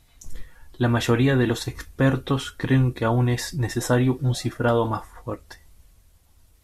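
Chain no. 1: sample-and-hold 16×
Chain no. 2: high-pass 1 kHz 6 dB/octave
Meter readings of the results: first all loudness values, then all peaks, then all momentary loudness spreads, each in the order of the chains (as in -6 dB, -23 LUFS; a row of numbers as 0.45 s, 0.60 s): -22.5 LUFS, -31.0 LUFS; -8.5 dBFS, -13.0 dBFS; 11 LU, 15 LU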